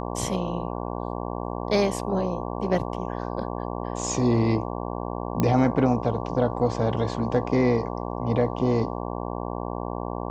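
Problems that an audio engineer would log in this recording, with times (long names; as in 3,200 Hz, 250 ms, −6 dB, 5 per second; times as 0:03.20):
mains buzz 60 Hz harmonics 19 −31 dBFS
0:05.40: click −10 dBFS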